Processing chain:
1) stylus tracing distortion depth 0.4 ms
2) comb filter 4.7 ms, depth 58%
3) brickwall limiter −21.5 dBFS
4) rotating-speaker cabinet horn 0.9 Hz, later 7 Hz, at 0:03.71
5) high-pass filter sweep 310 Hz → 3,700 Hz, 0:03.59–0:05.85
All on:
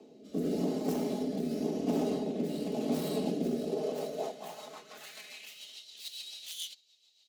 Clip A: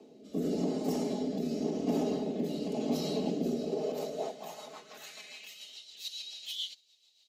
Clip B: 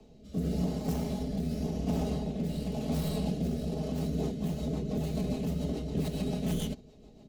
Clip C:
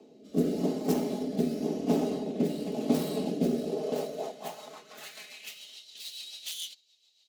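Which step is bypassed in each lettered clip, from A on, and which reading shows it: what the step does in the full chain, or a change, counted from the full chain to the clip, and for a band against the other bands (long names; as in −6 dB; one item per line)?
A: 1, 4 kHz band +2.5 dB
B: 5, 125 Hz band +12.5 dB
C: 3, change in crest factor +3.5 dB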